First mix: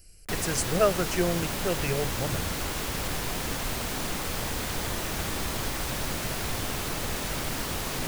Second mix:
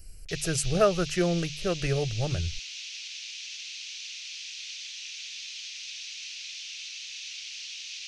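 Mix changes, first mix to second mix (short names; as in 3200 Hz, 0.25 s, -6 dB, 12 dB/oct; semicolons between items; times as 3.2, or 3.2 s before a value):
background: add elliptic band-pass 2500–6200 Hz, stop band 80 dB; master: add low shelf 110 Hz +9.5 dB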